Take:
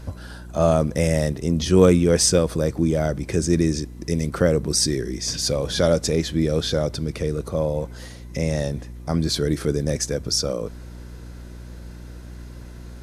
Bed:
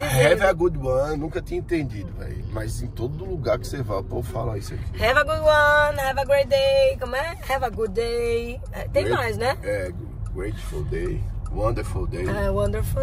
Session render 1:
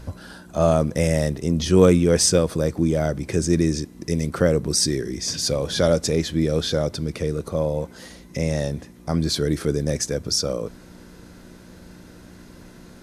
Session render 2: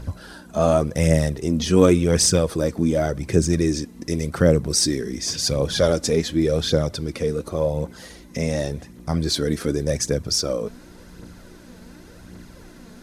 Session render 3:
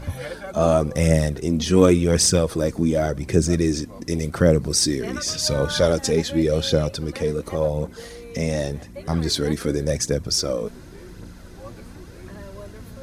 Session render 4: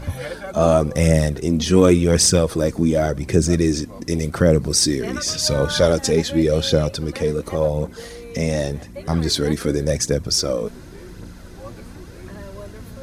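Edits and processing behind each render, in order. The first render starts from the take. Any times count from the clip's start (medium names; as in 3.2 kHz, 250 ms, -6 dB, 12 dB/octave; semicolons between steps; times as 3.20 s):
de-hum 60 Hz, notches 2
phaser 0.89 Hz, delay 4.8 ms, feedback 43%
add bed -17 dB
trim +2.5 dB; peak limiter -2 dBFS, peak gain reduction 2.5 dB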